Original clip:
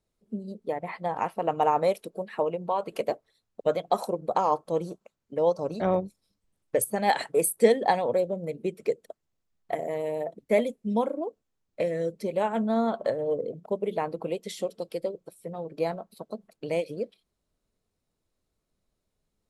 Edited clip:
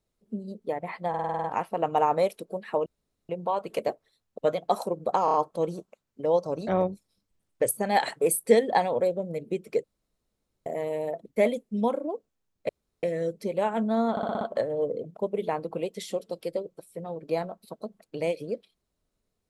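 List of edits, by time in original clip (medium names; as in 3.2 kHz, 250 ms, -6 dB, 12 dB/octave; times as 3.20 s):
1.09 s: stutter 0.05 s, 8 plays
2.51 s: insert room tone 0.43 s
4.47 s: stutter 0.03 s, 4 plays
8.97–9.79 s: room tone
11.82 s: insert room tone 0.34 s
12.90 s: stutter 0.06 s, 6 plays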